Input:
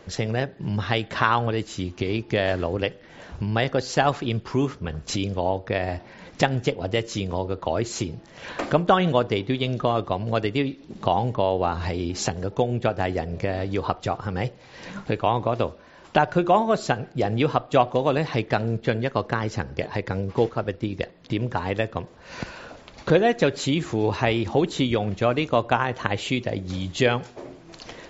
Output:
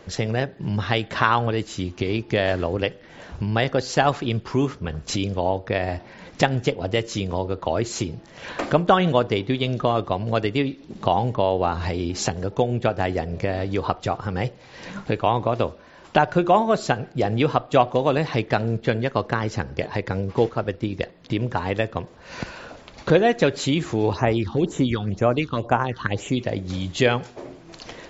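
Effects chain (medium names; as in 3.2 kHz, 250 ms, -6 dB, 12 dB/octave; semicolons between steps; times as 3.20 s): 24.13–26.39 s: phase shifter stages 6, 2 Hz, lowest notch 570–4400 Hz; trim +1.5 dB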